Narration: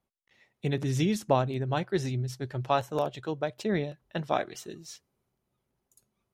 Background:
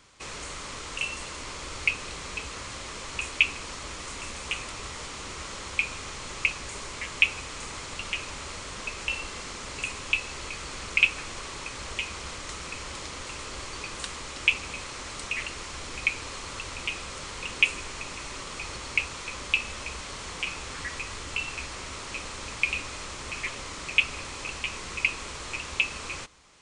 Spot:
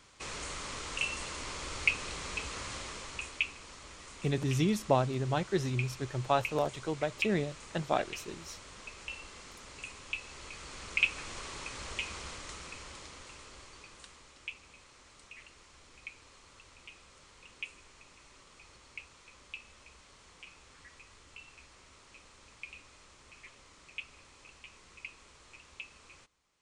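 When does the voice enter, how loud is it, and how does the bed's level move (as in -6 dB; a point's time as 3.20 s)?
3.60 s, -2.0 dB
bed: 2.76 s -2.5 dB
3.55 s -12 dB
10.10 s -12 dB
11.36 s -5 dB
12.16 s -5 dB
14.49 s -20 dB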